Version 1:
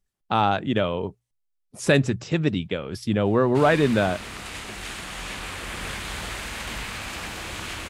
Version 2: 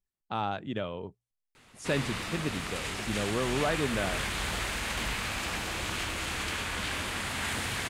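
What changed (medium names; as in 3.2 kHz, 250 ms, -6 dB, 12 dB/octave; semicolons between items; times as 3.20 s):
speech -11.0 dB; background: entry -1.70 s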